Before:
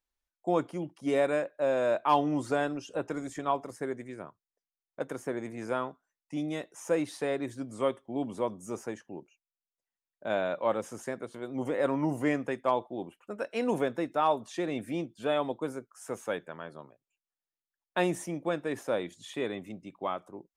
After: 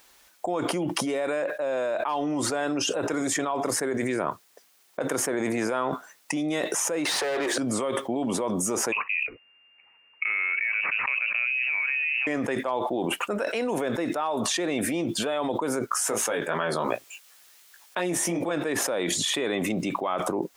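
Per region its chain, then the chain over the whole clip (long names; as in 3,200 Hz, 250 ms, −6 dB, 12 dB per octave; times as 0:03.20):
0:07.05–0:07.58: inverse Chebyshev high-pass filter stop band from 170 Hz + mid-hump overdrive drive 30 dB, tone 1,900 Hz, clips at −21.5 dBFS
0:08.92–0:12.27: tilt shelving filter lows +5 dB, about 1,100 Hz + downward compressor 2.5 to 1, threshold −31 dBFS + voice inversion scrambler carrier 2,800 Hz
0:15.91–0:18.51: chorus effect 2.8 Hz, delay 17 ms, depth 2.1 ms + hard clipping −16.5 dBFS + one half of a high-frequency compander encoder only
whole clip: high-pass filter 360 Hz 6 dB per octave; envelope flattener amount 100%; level −5.5 dB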